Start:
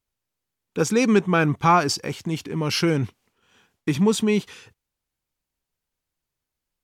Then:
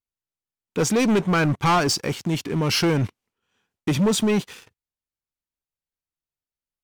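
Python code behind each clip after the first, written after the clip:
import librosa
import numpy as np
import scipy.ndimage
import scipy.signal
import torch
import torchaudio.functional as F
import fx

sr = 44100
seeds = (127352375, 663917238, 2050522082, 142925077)

y = fx.leveller(x, sr, passes=3)
y = F.gain(torch.from_numpy(y), -7.0).numpy()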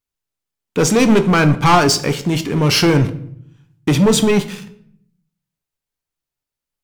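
y = fx.room_shoebox(x, sr, seeds[0], volume_m3=120.0, walls='mixed', distance_m=0.31)
y = F.gain(torch.from_numpy(y), 6.5).numpy()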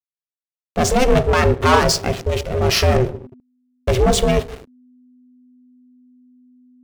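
y = fx.backlash(x, sr, play_db=-23.0)
y = y * np.sin(2.0 * np.pi * 250.0 * np.arange(len(y)) / sr)
y = F.gain(torch.from_numpy(y), 1.0).numpy()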